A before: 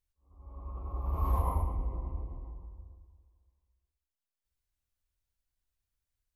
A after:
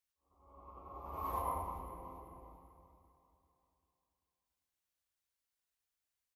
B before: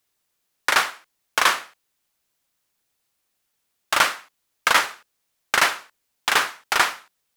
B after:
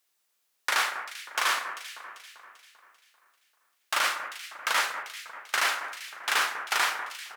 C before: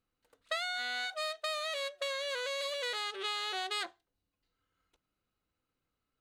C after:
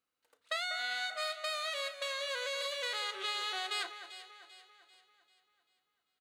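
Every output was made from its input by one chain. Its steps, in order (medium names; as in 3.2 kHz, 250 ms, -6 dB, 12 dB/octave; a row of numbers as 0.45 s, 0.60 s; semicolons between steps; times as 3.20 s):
high-pass 650 Hz 6 dB/octave; peak limiter -14 dBFS; doubling 34 ms -14 dB; on a send: echo whose repeats swap between lows and highs 196 ms, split 2 kHz, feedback 66%, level -9 dB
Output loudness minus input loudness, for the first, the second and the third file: -7.5 LU, -7.0 LU, 0.0 LU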